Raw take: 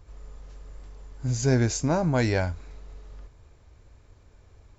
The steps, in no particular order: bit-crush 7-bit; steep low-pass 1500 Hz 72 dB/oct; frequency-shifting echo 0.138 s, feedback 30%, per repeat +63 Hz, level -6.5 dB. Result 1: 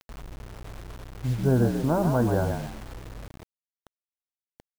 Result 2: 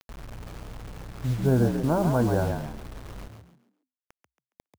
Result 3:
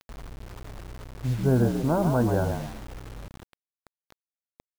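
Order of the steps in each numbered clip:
steep low-pass > frequency-shifting echo > bit-crush; steep low-pass > bit-crush > frequency-shifting echo; frequency-shifting echo > steep low-pass > bit-crush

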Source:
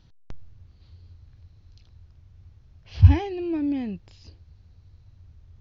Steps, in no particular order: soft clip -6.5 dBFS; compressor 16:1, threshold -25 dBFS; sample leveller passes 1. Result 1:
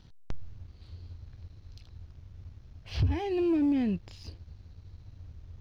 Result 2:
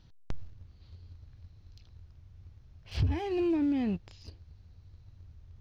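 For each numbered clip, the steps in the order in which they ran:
soft clip > compressor > sample leveller; sample leveller > soft clip > compressor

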